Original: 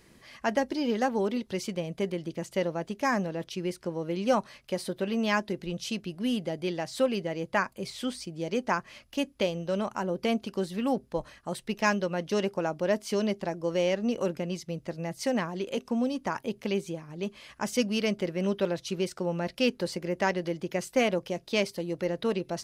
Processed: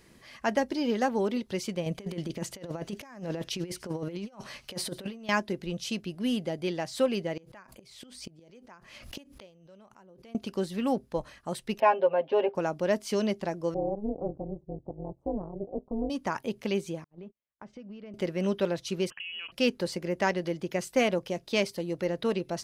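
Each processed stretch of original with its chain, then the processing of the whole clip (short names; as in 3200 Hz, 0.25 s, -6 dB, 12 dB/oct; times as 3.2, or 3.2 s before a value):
1.86–5.29 thin delay 85 ms, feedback 52%, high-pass 4100 Hz, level -17 dB + negative-ratio compressor -35 dBFS, ratio -0.5
7.37–10.35 flipped gate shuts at -30 dBFS, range -25 dB + backwards sustainer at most 61 dB/s
11.8–12.55 speaker cabinet 380–2600 Hz, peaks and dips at 590 Hz +6 dB, 860 Hz +7 dB, 1300 Hz -9 dB, 2000 Hz -9 dB + comb 7.5 ms, depth 96%
13.74–16.1 inverse Chebyshev low-pass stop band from 1900 Hz, stop band 50 dB + AM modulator 210 Hz, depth 80%
17.04–18.14 gate -40 dBFS, range -43 dB + compressor 10:1, threshold -39 dBFS + tape spacing loss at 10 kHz 39 dB
19.1–19.52 inverted band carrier 3100 Hz + compressor 12:1, threshold -35 dBFS + mismatched tape noise reduction encoder only
whole clip: dry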